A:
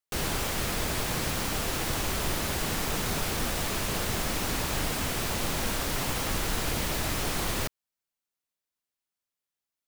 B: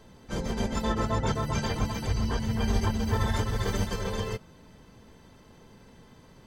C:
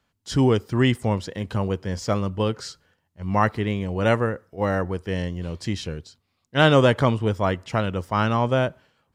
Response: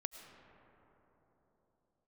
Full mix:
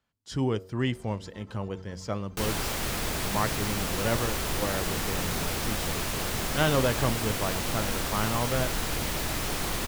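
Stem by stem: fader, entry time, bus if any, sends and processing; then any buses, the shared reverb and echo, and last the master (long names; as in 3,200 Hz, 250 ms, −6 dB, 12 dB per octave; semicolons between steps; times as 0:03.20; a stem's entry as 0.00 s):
−0.5 dB, 2.25 s, no send, no processing
−13.5 dB, 0.50 s, no send, automatic ducking −13 dB, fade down 1.80 s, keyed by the third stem
−8.5 dB, 0.00 s, no send, no processing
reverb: not used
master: hum removal 93.58 Hz, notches 7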